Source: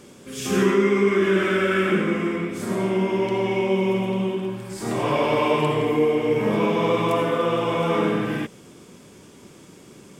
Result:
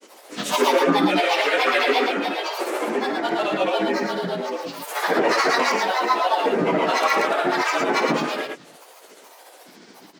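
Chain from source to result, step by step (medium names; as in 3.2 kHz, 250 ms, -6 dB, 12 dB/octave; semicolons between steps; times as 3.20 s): bass shelf 280 Hz -12 dB; frequency shift +130 Hz; granulator, grains 14 per s, pitch spread up and down by 12 st; harmony voices +4 st -10 dB; loudspeakers at several distances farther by 18 m -11 dB, 38 m -4 dB; trim +4.5 dB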